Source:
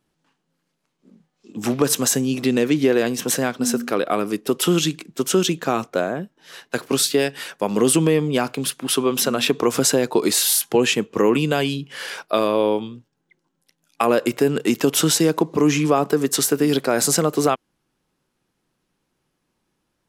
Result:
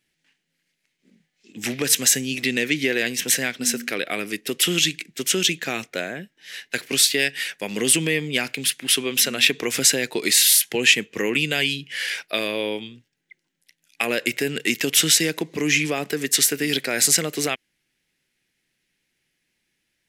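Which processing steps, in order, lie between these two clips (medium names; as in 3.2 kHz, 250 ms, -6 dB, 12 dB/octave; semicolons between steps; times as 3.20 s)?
resonant high shelf 1.5 kHz +9.5 dB, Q 3; trim -7 dB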